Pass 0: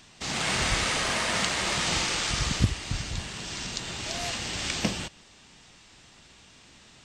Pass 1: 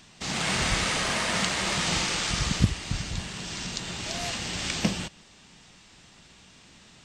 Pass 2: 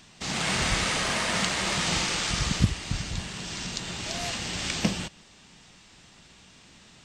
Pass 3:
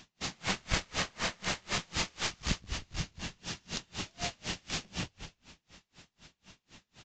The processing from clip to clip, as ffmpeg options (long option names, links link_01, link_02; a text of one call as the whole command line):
ffmpeg -i in.wav -af "equalizer=frequency=180:width_type=o:width=0.52:gain=5" out.wav
ffmpeg -i in.wav -af "aeval=exprs='0.531*(cos(1*acos(clip(val(0)/0.531,-1,1)))-cos(1*PI/2))+0.0376*(cos(2*acos(clip(val(0)/0.531,-1,1)))-cos(2*PI/2))':channel_layout=same" out.wav
ffmpeg -i in.wav -filter_complex "[0:a]aresample=16000,aeval=exprs='clip(val(0),-1,0.0299)':channel_layout=same,aresample=44100,asplit=6[link_01][link_02][link_03][link_04][link_05][link_06];[link_02]adelay=179,afreqshift=-84,volume=-8.5dB[link_07];[link_03]adelay=358,afreqshift=-168,volume=-16.2dB[link_08];[link_04]adelay=537,afreqshift=-252,volume=-24dB[link_09];[link_05]adelay=716,afreqshift=-336,volume=-31.7dB[link_10];[link_06]adelay=895,afreqshift=-420,volume=-39.5dB[link_11];[link_01][link_07][link_08][link_09][link_10][link_11]amix=inputs=6:normalize=0,aeval=exprs='val(0)*pow(10,-34*(0.5-0.5*cos(2*PI*4*n/s))/20)':channel_layout=same" out.wav